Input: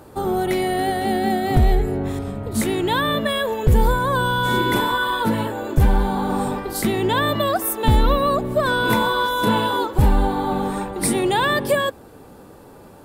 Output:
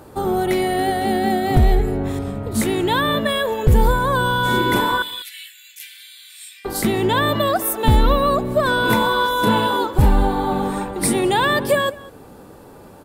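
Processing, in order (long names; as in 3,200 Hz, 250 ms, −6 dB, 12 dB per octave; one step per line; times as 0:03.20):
0:05.02–0:06.65: Butterworth high-pass 2,100 Hz 48 dB per octave
slap from a distant wall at 34 metres, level −20 dB
level +1.5 dB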